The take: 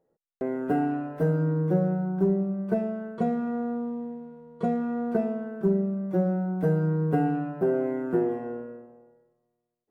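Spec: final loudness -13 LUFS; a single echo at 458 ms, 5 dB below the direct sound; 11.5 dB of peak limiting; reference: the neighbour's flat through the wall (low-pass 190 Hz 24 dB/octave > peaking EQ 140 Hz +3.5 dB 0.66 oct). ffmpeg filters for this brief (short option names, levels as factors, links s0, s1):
-af "alimiter=limit=0.0631:level=0:latency=1,lowpass=f=190:w=0.5412,lowpass=f=190:w=1.3066,equalizer=f=140:t=o:w=0.66:g=3.5,aecho=1:1:458:0.562,volume=11.2"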